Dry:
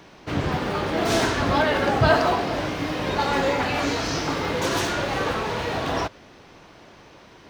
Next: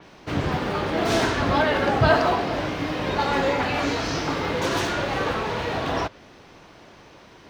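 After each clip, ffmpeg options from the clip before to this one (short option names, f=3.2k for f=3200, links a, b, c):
-af "adynamicequalizer=threshold=0.00794:dfrequency=5300:dqfactor=0.7:tfrequency=5300:tqfactor=0.7:attack=5:release=100:ratio=0.375:range=2.5:mode=cutabove:tftype=highshelf"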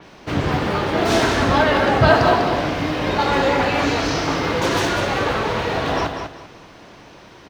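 -af "aecho=1:1:196|392|588:0.447|0.116|0.0302,volume=4dB"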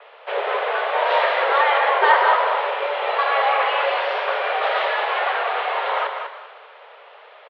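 -filter_complex "[0:a]highpass=f=170:t=q:w=0.5412,highpass=f=170:t=q:w=1.307,lowpass=f=3.2k:t=q:w=0.5176,lowpass=f=3.2k:t=q:w=0.7071,lowpass=f=3.2k:t=q:w=1.932,afreqshift=270,asplit=7[a][b][c][d][e][f][g];[b]adelay=117,afreqshift=58,volume=-16dB[h];[c]adelay=234,afreqshift=116,volume=-20.3dB[i];[d]adelay=351,afreqshift=174,volume=-24.6dB[j];[e]adelay=468,afreqshift=232,volume=-28.9dB[k];[f]adelay=585,afreqshift=290,volume=-33.2dB[l];[g]adelay=702,afreqshift=348,volume=-37.5dB[m];[a][h][i][j][k][l][m]amix=inputs=7:normalize=0,volume=-1dB"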